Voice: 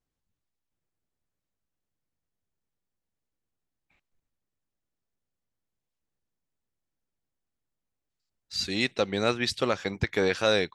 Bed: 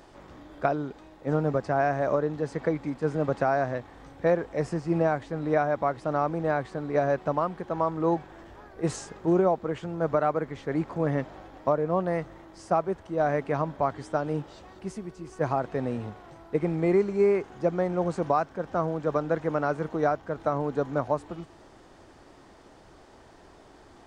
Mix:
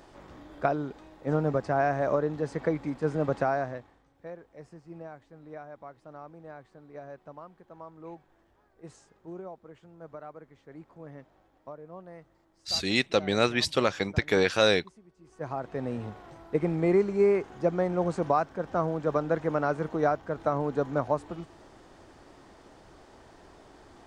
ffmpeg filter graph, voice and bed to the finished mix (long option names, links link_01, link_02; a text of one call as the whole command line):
ffmpeg -i stem1.wav -i stem2.wav -filter_complex "[0:a]adelay=4150,volume=1.5dB[link_01];[1:a]volume=17.5dB,afade=type=out:start_time=3.38:duration=0.65:silence=0.125893,afade=type=in:start_time=15.16:duration=0.99:silence=0.11885[link_02];[link_01][link_02]amix=inputs=2:normalize=0" out.wav